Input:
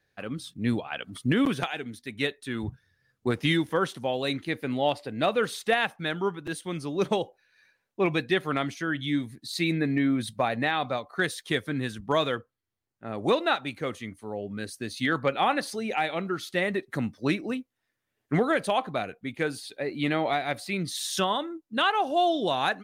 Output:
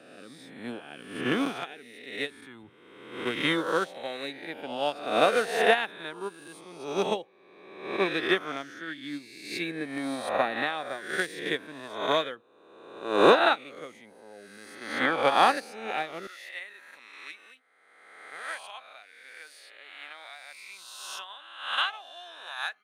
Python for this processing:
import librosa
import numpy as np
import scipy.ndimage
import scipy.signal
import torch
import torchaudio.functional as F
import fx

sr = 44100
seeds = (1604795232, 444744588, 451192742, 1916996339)

y = fx.spec_swells(x, sr, rise_s=1.58)
y = fx.highpass(y, sr, hz=fx.steps((0.0, 230.0), (16.27, 1300.0)), slope=12)
y = fx.upward_expand(y, sr, threshold_db=-29.0, expansion=2.5)
y = y * librosa.db_to_amplitude(3.0)